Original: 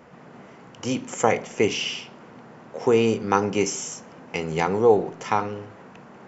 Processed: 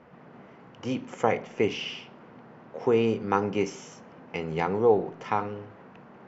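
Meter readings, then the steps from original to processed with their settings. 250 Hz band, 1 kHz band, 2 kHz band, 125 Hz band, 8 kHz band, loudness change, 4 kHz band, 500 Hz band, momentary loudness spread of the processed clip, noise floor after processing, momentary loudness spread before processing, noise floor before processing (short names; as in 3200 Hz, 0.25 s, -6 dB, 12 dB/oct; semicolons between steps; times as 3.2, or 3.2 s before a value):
-4.0 dB, -4.5 dB, -5.5 dB, -3.5 dB, n/a, -4.0 dB, -7.5 dB, -4.0 dB, 18 LU, -51 dBFS, 16 LU, -47 dBFS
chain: air absorption 180 m; gain -3.5 dB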